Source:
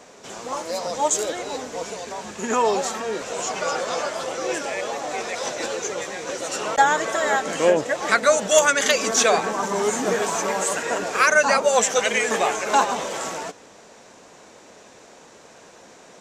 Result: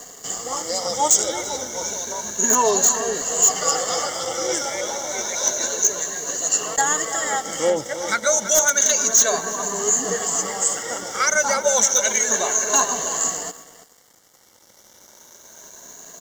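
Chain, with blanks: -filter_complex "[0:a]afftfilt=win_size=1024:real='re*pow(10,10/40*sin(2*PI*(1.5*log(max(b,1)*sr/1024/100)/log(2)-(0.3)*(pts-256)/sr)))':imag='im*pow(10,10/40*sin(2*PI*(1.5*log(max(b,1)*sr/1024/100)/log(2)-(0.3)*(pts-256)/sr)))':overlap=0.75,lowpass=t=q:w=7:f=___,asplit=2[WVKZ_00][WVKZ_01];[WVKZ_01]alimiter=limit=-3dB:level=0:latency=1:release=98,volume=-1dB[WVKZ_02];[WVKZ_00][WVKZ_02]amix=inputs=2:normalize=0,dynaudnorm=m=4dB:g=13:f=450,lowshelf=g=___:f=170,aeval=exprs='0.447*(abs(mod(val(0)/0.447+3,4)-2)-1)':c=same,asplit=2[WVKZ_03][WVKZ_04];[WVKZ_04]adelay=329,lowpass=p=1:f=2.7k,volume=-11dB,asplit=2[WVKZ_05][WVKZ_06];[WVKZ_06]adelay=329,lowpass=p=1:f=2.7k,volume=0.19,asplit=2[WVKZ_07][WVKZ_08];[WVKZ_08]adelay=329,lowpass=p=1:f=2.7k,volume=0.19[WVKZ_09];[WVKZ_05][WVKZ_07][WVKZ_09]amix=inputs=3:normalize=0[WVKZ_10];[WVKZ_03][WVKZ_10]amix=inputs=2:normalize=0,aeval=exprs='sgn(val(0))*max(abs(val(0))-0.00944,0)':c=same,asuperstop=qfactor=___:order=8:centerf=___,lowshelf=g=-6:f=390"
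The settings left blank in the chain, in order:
6.7k, 11.5, 6.3, 2500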